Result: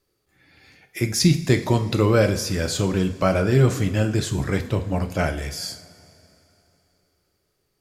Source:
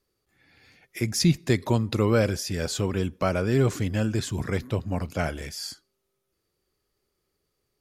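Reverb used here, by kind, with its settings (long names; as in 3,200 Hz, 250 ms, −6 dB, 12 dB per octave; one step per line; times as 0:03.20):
coupled-rooms reverb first 0.46 s, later 3.3 s, from −18 dB, DRR 6 dB
level +3.5 dB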